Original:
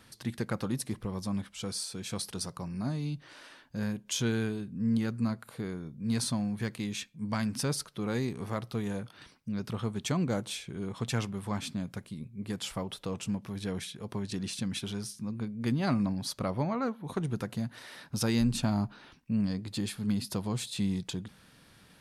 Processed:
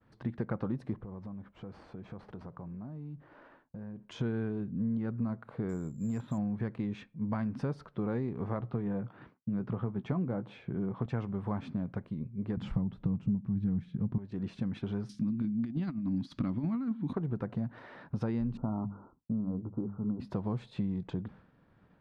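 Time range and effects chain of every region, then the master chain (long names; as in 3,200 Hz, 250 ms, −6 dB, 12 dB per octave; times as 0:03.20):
0:00.96–0:04.05: variable-slope delta modulation 64 kbit/s + high-shelf EQ 2,800 Hz −10 dB + downward compressor 16 to 1, threshold −43 dBFS
0:05.69–0:06.38: high-shelf EQ 4,100 Hz +9 dB + downward compressor 2.5 to 1, threshold −31 dBFS + bad sample-rate conversion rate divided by 6×, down filtered, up zero stuff
0:08.60–0:11.06: high-pass filter 97 Hz + bass and treble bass +3 dB, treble −9 dB + double-tracking delay 16 ms −12 dB
0:12.57–0:14.18: low shelf with overshoot 310 Hz +14 dB, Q 1.5 + highs frequency-modulated by the lows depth 0.11 ms
0:15.09–0:17.13: drawn EQ curve 130 Hz 0 dB, 280 Hz +10 dB, 460 Hz −14 dB, 680 Hz −12 dB, 3,600 Hz +11 dB + compressor whose output falls as the input rises −28 dBFS, ratio −0.5
0:18.57–0:20.20: Chebyshev low-pass with heavy ripple 1,400 Hz, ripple 3 dB + mains-hum notches 50/100/150/200 Hz
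whole clip: downward expander −51 dBFS; low-pass filter 1,200 Hz 12 dB per octave; downward compressor 5 to 1, threshold −34 dBFS; level +4 dB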